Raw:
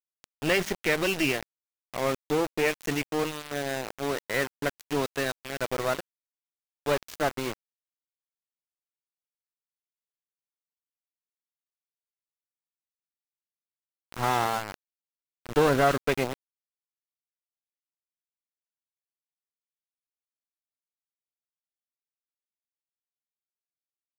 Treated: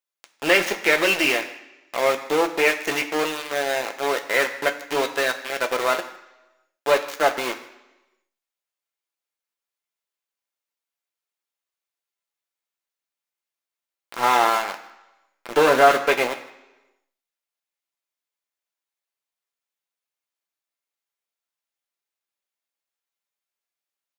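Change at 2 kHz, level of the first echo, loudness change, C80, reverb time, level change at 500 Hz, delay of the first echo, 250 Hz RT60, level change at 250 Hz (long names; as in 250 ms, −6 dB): +9.0 dB, −20.5 dB, +7.0 dB, 13.5 dB, 1.0 s, +6.5 dB, 156 ms, 0.90 s, +1.0 dB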